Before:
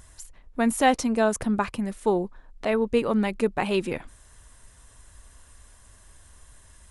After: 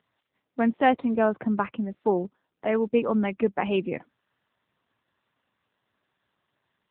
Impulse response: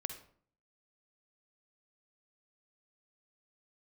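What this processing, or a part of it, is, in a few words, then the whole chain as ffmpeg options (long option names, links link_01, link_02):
mobile call with aggressive noise cancelling: -af "highpass=frequency=130:width=0.5412,highpass=frequency=130:width=1.3066,afftdn=noise_reduction=14:noise_floor=-39" -ar 8000 -c:a libopencore_amrnb -b:a 7950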